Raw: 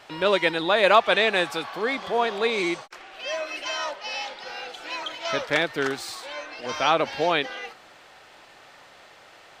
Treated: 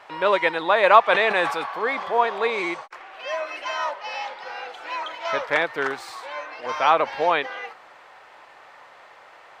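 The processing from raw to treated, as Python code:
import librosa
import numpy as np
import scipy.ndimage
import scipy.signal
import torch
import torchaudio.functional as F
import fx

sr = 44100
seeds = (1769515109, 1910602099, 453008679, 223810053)

y = fx.graphic_eq(x, sr, hz=(500, 1000, 2000), db=(6, 12, 7))
y = fx.sustainer(y, sr, db_per_s=69.0, at=(1.07, 2.05))
y = y * 10.0 ** (-7.5 / 20.0)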